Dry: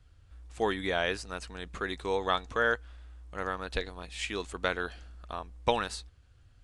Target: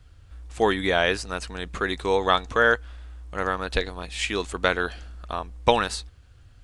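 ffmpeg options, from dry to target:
-af "volume=2.51"

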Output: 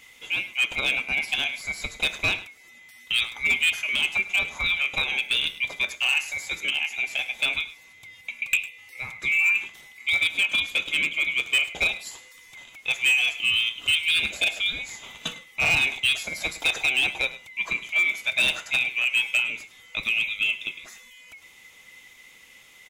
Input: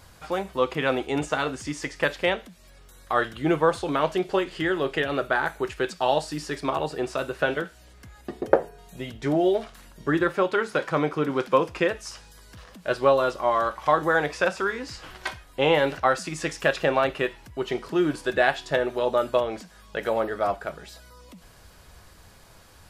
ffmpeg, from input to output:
-filter_complex "[0:a]afftfilt=real='real(if(lt(b,920),b+92*(1-2*mod(floor(b/92),2)),b),0)':imag='imag(if(lt(b,920),b+92*(1-2*mod(floor(b/92),2)),b),0)':win_size=2048:overlap=0.75,asoftclip=type=hard:threshold=0.158,asplit=2[s0][s1];[s1]aecho=0:1:104:0.15[s2];[s0][s2]amix=inputs=2:normalize=0"

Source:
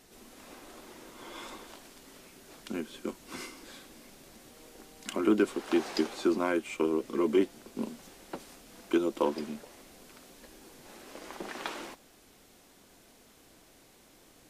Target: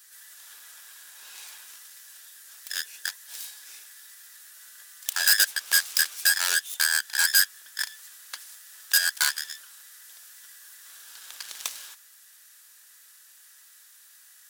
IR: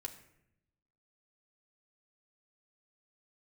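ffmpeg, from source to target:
-filter_complex "[0:a]afftfilt=real='real(if(between(b,1,1012),(2*floor((b-1)/92)+1)*92-b,b),0)':imag='imag(if(between(b,1,1012),(2*floor((b-1)/92)+1)*92-b,b),0)*if(between(b,1,1012),-1,1)':win_size=2048:overlap=0.75,asplit=2[s0][s1];[s1]aeval=exprs='0.224*sin(PI/2*3.55*val(0)/0.224)':c=same,volume=0.422[s2];[s0][s2]amix=inputs=2:normalize=0,aeval=exprs='0.168*(cos(1*acos(clip(val(0)/0.168,-1,1)))-cos(1*PI/2))+0.0211*(cos(2*acos(clip(val(0)/0.168,-1,1)))-cos(2*PI/2))+0.0668*(cos(3*acos(clip(val(0)/0.168,-1,1)))-cos(3*PI/2))+0.00422*(cos(7*acos(clip(val(0)/0.168,-1,1)))-cos(7*PI/2))+0.00841*(cos(8*acos(clip(val(0)/0.168,-1,1)))-cos(8*PI/2))':c=same,aderivative,volume=2.24"

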